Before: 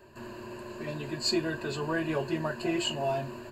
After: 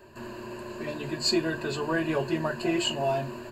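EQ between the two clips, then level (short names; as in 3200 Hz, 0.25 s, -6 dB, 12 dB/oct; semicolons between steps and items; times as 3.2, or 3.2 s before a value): notches 50/100/150 Hz; +3.0 dB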